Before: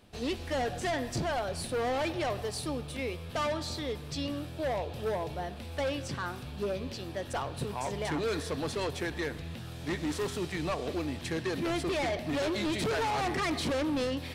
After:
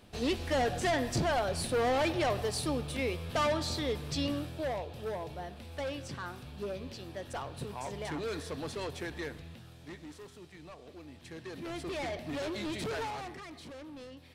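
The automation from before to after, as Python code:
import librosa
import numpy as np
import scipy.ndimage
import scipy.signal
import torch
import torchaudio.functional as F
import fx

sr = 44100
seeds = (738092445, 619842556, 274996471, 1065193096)

y = fx.gain(x, sr, db=fx.line((4.31, 2.0), (4.87, -5.0), (9.27, -5.0), (10.27, -17.0), (10.91, -17.0), (12.01, -5.5), (13.02, -5.5), (13.45, -16.5)))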